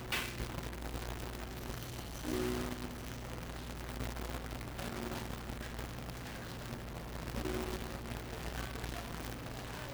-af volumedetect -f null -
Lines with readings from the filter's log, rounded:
mean_volume: -41.4 dB
max_volume: -29.8 dB